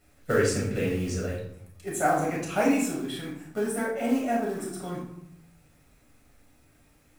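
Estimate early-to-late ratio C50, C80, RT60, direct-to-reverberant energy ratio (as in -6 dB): 3.5 dB, 7.0 dB, 0.80 s, -4.0 dB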